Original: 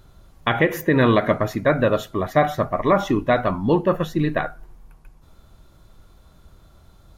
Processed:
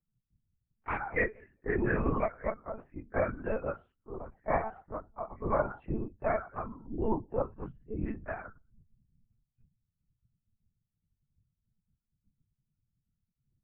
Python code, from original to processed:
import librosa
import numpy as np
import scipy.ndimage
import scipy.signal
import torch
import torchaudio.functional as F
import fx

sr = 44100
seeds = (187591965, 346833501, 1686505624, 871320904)

y = fx.bin_expand(x, sr, power=2.0)
y = fx.stretch_grains(y, sr, factor=1.9, grain_ms=61.0)
y = scipy.signal.sosfilt(scipy.signal.ellip(4, 1.0, 40, 2400.0, 'lowpass', fs=sr, output='sos'), y)
y = fx.whisperise(y, sr, seeds[0])
y = fx.hum_notches(y, sr, base_hz=50, count=3)
y = fx.lpc_monotone(y, sr, seeds[1], pitch_hz=220.0, order=8)
y = F.gain(torch.from_numpy(y), -7.5).numpy()